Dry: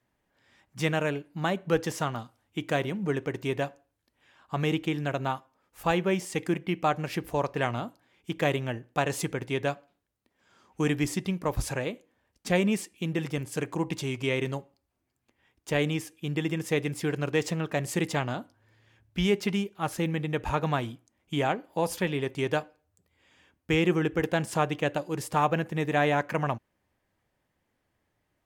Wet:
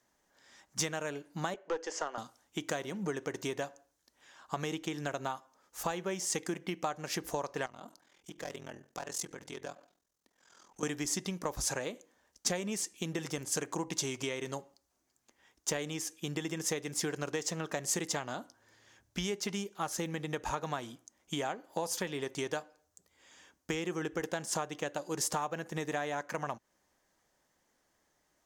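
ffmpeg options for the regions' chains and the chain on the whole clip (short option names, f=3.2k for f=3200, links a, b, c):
-filter_complex "[0:a]asettb=1/sr,asplit=3[a][b][c];[a]atrim=end=1.544[d];[b]atrim=start=1.54:end=2.18,asetpts=PTS-STARTPTS,afade=t=in:d=0.004:c=qsin,afade=t=out:st=0.636:d=0.004:c=qsin,highpass=f=330:w=0.5412,highpass=f=330:w=1.3066,equalizer=f=510:t=q:w=4:g=3,equalizer=f=1.1k:t=q:w=4:g=-3,equalizer=f=3.8k:t=q:w=4:g=-10,equalizer=f=5.8k:t=q:w=4:g=-7,lowpass=f=6.2k:w=0.5412,lowpass=f=6.2k:w=1.3066,aeval=exprs='(tanh(7.08*val(0)+0.5)-tanh(0.5))/7.08':c=same[e];[c]atrim=start=2.176[f];[d][e]acrossfade=d=0.004:c1=hsin:c2=qsin[g];[g][f]acrossfade=d=0.004:c1=qsin:c2=hsin,asettb=1/sr,asplit=3[h][i][j];[h]atrim=end=7.664[k];[i]atrim=start=7.66:end=10.83,asetpts=PTS-STARTPTS,afade=t=in:d=0.004:c=qsin,afade=t=out:st=3.166:d=0.004:c=qsin,volume=18.5dB,asoftclip=hard,volume=-18.5dB,acompressor=threshold=-43dB:ratio=2.5:attack=3.2:release=140:knee=1:detection=peak,aeval=exprs='val(0)*sin(2*PI*21*n/s)':c=same[l];[j]atrim=start=10.826[m];[k][l]acrossfade=d=0.004:c1=hsin:c2=qsin[n];[n][m]acrossfade=d=0.004:c1=qsin:c2=hsin,lowshelf=f=410:g=-7.5,acompressor=threshold=-36dB:ratio=6,equalizer=f=100:t=o:w=0.67:g=-10,equalizer=f=2.5k:t=o:w=0.67:g=-6,equalizer=f=6.3k:t=o:w=0.67:g=10,volume=4.5dB"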